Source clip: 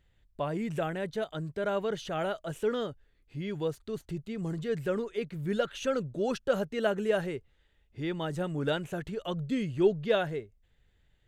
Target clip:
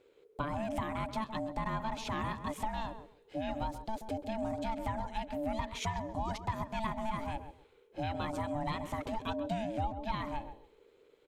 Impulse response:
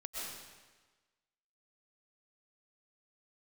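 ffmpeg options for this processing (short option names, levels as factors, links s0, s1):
-filter_complex "[0:a]aeval=exprs='val(0)*sin(2*PI*440*n/s)':c=same,asplit=2[s0][s1];[s1]aderivative[s2];[1:a]atrim=start_sample=2205,adelay=30[s3];[s2][s3]afir=irnorm=-1:irlink=0,volume=0.0841[s4];[s0][s4]amix=inputs=2:normalize=0,acompressor=threshold=0.0141:ratio=6,asplit=2[s5][s6];[s6]adelay=133,lowpass=f=1200:p=1,volume=0.355,asplit=2[s7][s8];[s8]adelay=133,lowpass=f=1200:p=1,volume=0.21,asplit=2[s9][s10];[s10]adelay=133,lowpass=f=1200:p=1,volume=0.21[s11];[s5][s7][s9][s11]amix=inputs=4:normalize=0,volume=1.78"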